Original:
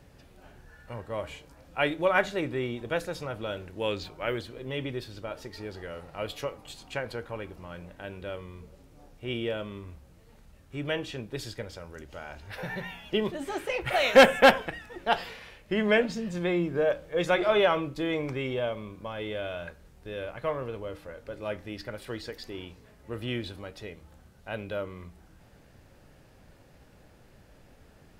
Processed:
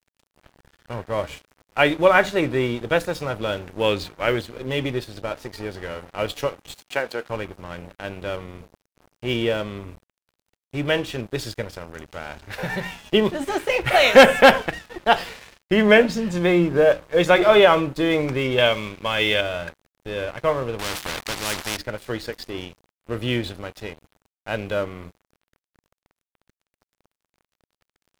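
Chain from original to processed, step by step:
0:06.74–0:07.29: high-pass filter 280 Hz 12 dB per octave
0:18.58–0:19.41: parametric band 2,800 Hz +13 dB 2 octaves
dead-zone distortion −47.5 dBFS
boost into a limiter +11 dB
0:20.79–0:21.77: every bin compressed towards the loudest bin 4 to 1
level −1 dB

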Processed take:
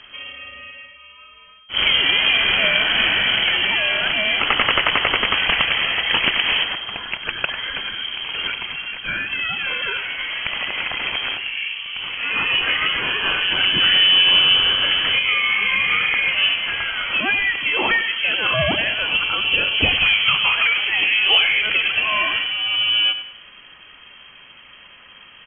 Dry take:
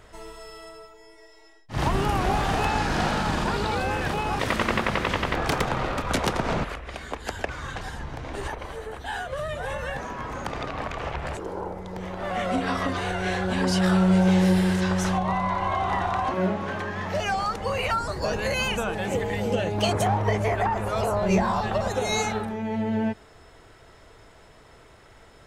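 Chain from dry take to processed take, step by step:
voice inversion scrambler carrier 3,200 Hz
high-frequency loss of the air 180 metres
repeating echo 98 ms, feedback 37%, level −11.5 dB
level +8.5 dB

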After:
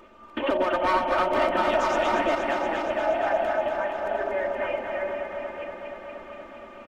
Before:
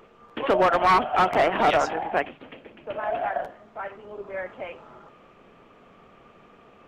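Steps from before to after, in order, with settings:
delay that plays each chunk backwards 470 ms, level −2 dB
comb filter 3.3 ms, depth 79%
downward compressor 6 to 1, threshold −22 dBFS, peak gain reduction 12.5 dB
on a send: delay that swaps between a low-pass and a high-pass 118 ms, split 860 Hz, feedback 88%, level −5 dB

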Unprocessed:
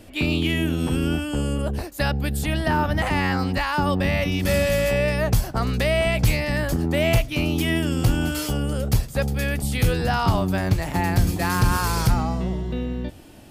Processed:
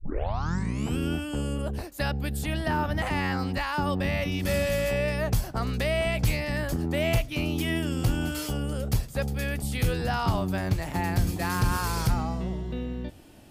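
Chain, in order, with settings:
turntable start at the beginning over 0.97 s
level −5.5 dB

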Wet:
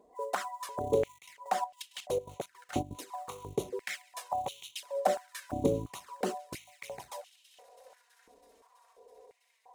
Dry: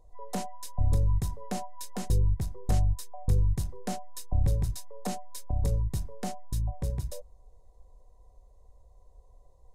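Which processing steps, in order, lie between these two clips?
high-shelf EQ 5,300 Hz −6.5 dB
on a send: delay with a high-pass on its return 327 ms, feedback 80%, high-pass 1,700 Hz, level −17.5 dB
0:01.08–0:02.93: on the sum: gate pattern ".x.x.x.xx" 165 BPM −12 dB
in parallel at −5.5 dB: sample-rate reduction 8,400 Hz, jitter 20%
on the sum: flanger swept by the level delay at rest 5.1 ms, full sweep at −22 dBFS
high-pass on a step sequencer 2.9 Hz 300–3,000 Hz
level +4.5 dB

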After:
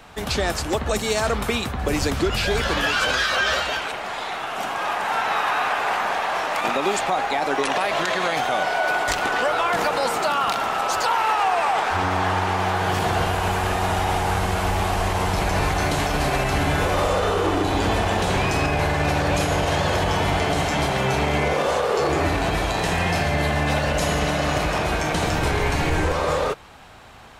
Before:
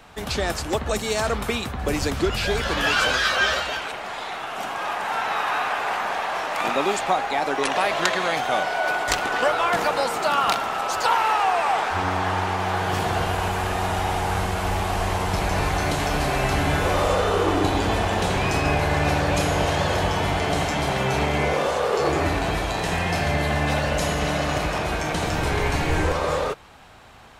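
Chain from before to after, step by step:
brickwall limiter −14.5 dBFS, peak gain reduction 10 dB
level +2.5 dB

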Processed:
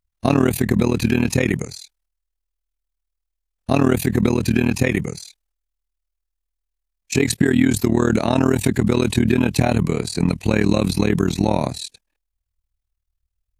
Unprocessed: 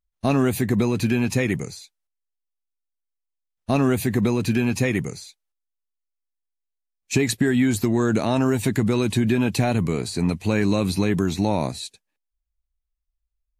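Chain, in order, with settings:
amplitude modulation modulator 39 Hz, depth 85%
level +7 dB

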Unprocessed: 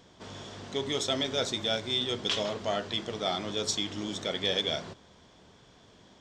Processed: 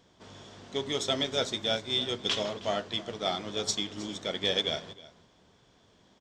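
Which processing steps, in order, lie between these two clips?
on a send: single-tap delay 315 ms −14.5 dB
on the sum: expander for the loud parts 1.5 to 1, over −40 dBFS
level +1.5 dB

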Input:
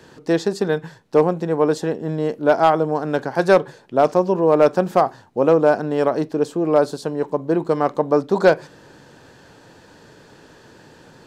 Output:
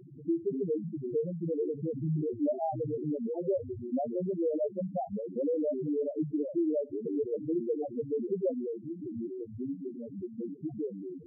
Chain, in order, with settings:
each half-wave held at its own peak
downward compressor 16 to 1, threshold −23 dBFS, peak gain reduction 17.5 dB
delay with pitch and tempo change per echo 164 ms, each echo −4 semitones, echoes 2, each echo −6 dB
spectral peaks only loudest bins 2

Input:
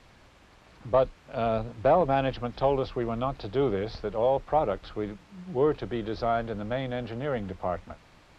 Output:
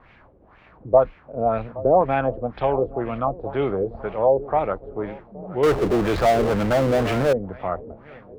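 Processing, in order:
feedback echo with a long and a short gap by turns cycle 1,367 ms, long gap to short 1.5 to 1, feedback 35%, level −18 dB
auto-filter low-pass sine 2 Hz 420–2,500 Hz
0:05.63–0:07.33: power curve on the samples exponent 0.5
level +2 dB

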